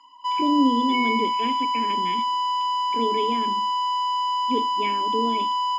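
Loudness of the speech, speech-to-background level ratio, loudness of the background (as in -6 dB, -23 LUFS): -27.5 LUFS, -3.5 dB, -24.0 LUFS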